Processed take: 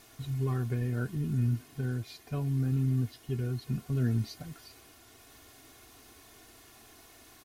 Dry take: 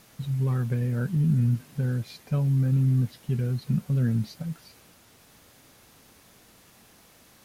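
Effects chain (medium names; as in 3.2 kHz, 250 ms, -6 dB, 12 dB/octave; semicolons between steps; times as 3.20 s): gain riding within 3 dB 2 s; comb 2.8 ms, depth 76%; trim -4.5 dB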